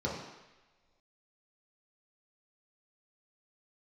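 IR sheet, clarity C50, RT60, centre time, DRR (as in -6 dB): 2.5 dB, not exponential, 54 ms, -5.0 dB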